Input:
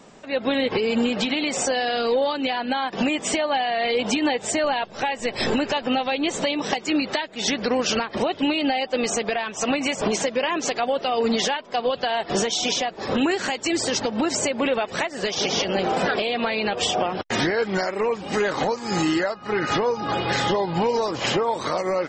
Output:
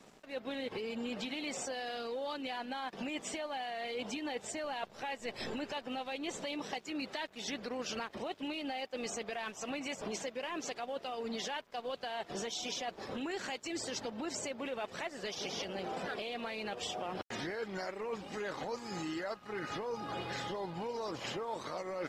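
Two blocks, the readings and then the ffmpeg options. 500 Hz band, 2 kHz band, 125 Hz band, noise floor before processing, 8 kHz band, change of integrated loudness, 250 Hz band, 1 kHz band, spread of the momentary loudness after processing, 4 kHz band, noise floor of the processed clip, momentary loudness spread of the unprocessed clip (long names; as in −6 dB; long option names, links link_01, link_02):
−16.5 dB, −15.5 dB, −16.5 dB, −41 dBFS, −16.0 dB, −16.0 dB, −17.0 dB, −16.0 dB, 2 LU, −16.0 dB, −56 dBFS, 3 LU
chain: -af "areverse,acompressor=threshold=-30dB:ratio=10,areverse,aeval=exprs='sgn(val(0))*max(abs(val(0))-0.00237,0)':channel_layout=same,volume=-5.5dB" -ar 48000 -c:a mp2 -b:a 96k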